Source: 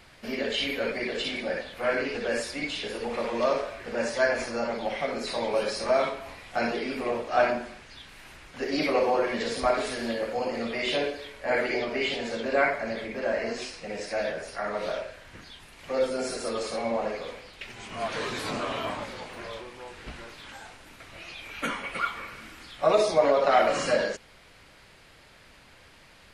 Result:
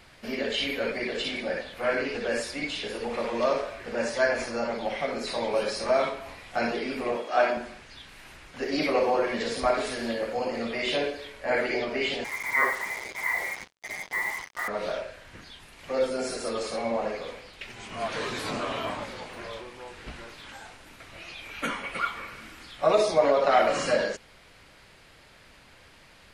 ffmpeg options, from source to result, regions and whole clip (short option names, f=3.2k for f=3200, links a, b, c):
-filter_complex "[0:a]asettb=1/sr,asplit=3[a][b][c];[a]atrim=end=7.164[d];[b]atrim=start=7.16:end=7.57,asetpts=PTS-STARTPTS,afade=t=in:d=0.004:c=qsin,afade=t=out:st=0.406:d=0.004:c=qsin,highpass=250,aeval=exprs='val(0)+0.00251*sin(2*PI*3300*n/s)':c=same[e];[c]atrim=start=7.566[f];[d][e]acrossfade=d=0.004:c1=hsin:c2=qsin[g];[g][f]acrossfade=d=0.004:c1=qsin:c2=hsin,asettb=1/sr,asplit=3[h][i][j];[h]atrim=end=12.244[k];[i]atrim=start=12.24:end=14.68,asetpts=PTS-STARTPTS,afade=t=in:d=0.004:c=qsin,afade=t=out:st=2.436:d=0.004:c=qsin,highpass=370,lowpass=f=2.2k:t=q:w=0.5098,lowpass=f=2.2k:t=q:w=0.6013,lowpass=f=2.2k:t=q:w=0.9,lowpass=f=2.2k:t=q:w=2.563,afreqshift=-2600,acrusher=bits=5:mix=0:aa=0.5[l];[j]atrim=start=14.676[m];[k][l]acrossfade=d=0.004:c1=hsin:c2=qsin[n];[n][m]acrossfade=d=0.004:c1=qsin:c2=hsin"